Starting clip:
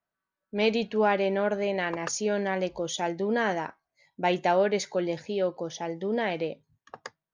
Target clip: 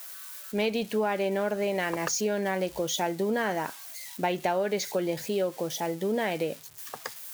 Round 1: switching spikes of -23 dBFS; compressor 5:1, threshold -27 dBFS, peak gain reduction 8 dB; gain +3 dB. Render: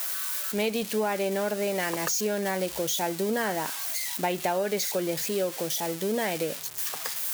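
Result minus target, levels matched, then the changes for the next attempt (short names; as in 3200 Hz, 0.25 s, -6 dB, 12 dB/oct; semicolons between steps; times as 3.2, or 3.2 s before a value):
switching spikes: distortion +11 dB
change: switching spikes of -34.5 dBFS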